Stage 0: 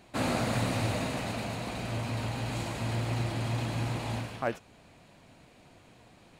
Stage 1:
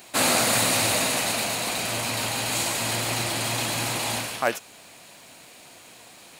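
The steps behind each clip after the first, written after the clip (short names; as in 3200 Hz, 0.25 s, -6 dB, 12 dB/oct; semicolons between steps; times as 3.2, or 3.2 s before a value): RIAA curve recording; gain +8.5 dB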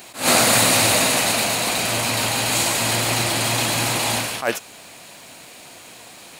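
attack slew limiter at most 170 dB/s; gain +6 dB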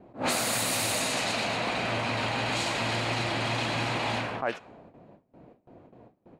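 gate with hold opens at -31 dBFS; low-pass opened by the level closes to 390 Hz, open at -12.5 dBFS; compressor 6:1, threshold -26 dBFS, peak gain reduction 13 dB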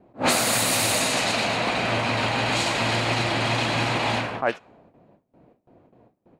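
upward expander 1.5:1, over -46 dBFS; gain +7.5 dB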